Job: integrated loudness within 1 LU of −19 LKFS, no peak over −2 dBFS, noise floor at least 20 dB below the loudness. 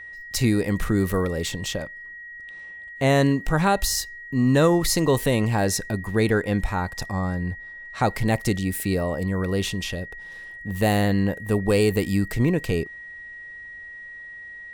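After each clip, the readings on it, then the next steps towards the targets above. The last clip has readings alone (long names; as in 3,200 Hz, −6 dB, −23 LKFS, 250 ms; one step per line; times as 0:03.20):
interfering tone 1,900 Hz; level of the tone −37 dBFS; integrated loudness −23.5 LKFS; sample peak −7.5 dBFS; target loudness −19.0 LKFS
→ notch filter 1,900 Hz, Q 30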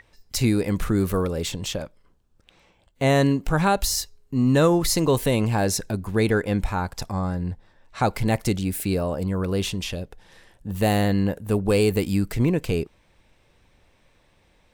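interfering tone none found; integrated loudness −23.5 LKFS; sample peak −8.0 dBFS; target loudness −19.0 LKFS
→ level +4.5 dB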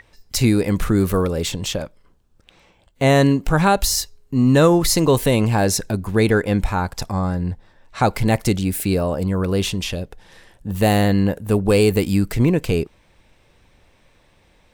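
integrated loudness −19.0 LKFS; sample peak −3.5 dBFS; background noise floor −57 dBFS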